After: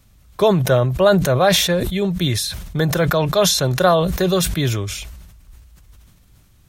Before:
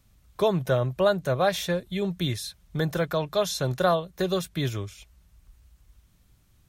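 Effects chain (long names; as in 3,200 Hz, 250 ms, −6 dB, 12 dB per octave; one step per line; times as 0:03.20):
level that may fall only so fast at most 41 dB per second
level +7.5 dB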